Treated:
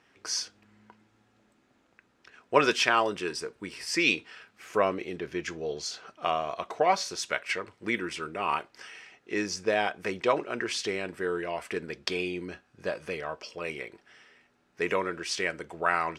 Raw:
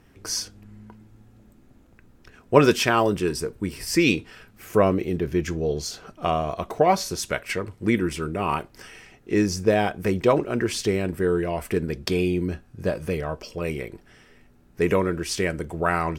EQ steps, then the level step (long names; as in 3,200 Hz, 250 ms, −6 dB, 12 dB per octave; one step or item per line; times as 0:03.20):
high-pass filter 1,200 Hz 6 dB per octave
high-frequency loss of the air 80 metres
+1.5 dB